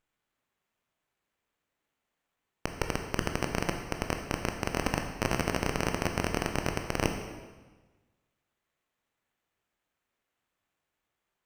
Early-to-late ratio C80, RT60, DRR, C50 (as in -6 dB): 7.5 dB, 1.3 s, 4.0 dB, 6.0 dB